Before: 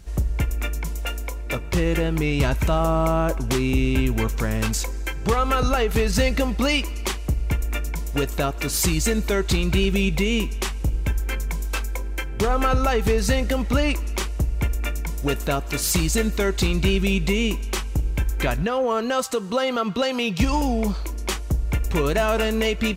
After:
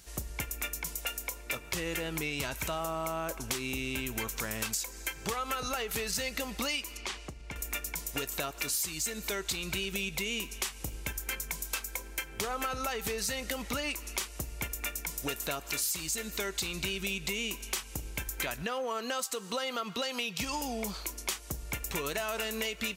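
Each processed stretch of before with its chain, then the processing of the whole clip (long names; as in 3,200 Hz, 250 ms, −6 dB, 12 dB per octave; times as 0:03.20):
0:06.97–0:07.56: Bessel low-pass filter 4,500 Hz + downward compressor, threshold −26 dBFS
whole clip: spectral tilt +3 dB per octave; downward compressor 5 to 1, threshold −26 dBFS; level −5 dB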